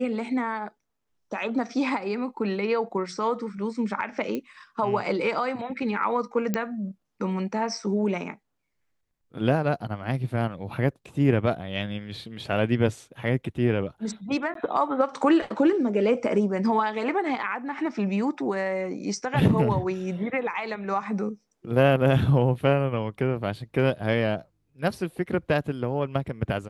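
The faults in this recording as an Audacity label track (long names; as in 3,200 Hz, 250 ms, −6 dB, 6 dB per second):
4.350000	4.350000	click −18 dBFS
6.540000	6.540000	click −12 dBFS
14.540000	14.550000	drop-out 13 ms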